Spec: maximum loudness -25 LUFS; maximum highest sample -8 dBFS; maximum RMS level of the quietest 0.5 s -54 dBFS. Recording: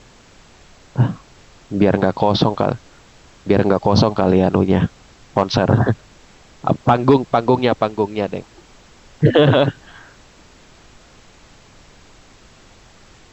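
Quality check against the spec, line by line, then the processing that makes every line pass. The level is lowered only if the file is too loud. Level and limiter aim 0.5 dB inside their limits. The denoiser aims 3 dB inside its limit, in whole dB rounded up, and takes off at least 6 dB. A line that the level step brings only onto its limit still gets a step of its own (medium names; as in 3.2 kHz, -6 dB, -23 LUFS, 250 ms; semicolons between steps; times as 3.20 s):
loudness -17.5 LUFS: fail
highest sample -2.0 dBFS: fail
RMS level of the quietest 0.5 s -47 dBFS: fail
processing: trim -8 dB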